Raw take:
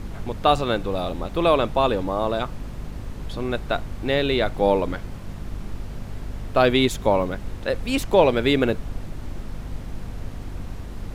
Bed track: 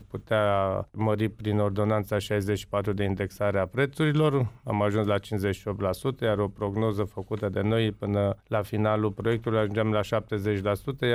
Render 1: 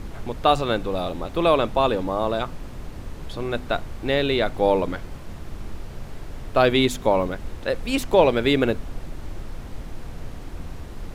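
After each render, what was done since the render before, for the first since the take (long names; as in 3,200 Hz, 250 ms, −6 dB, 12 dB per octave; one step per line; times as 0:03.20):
hum removal 50 Hz, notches 5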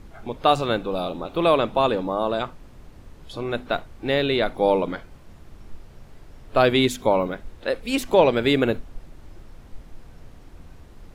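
noise reduction from a noise print 10 dB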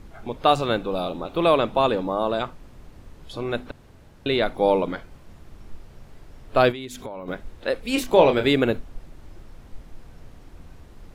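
0:03.71–0:04.26: fill with room tone
0:06.71–0:07.28: downward compressor 8 to 1, threshold −31 dBFS
0:07.93–0:08.47: double-tracking delay 28 ms −7 dB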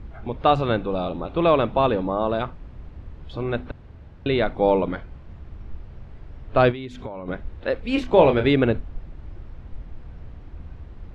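low-pass filter 3,100 Hz 12 dB per octave
parametric band 62 Hz +10 dB 2.3 octaves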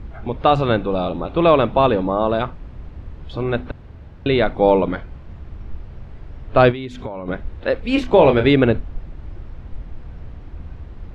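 level +4.5 dB
brickwall limiter −2 dBFS, peak gain reduction 3 dB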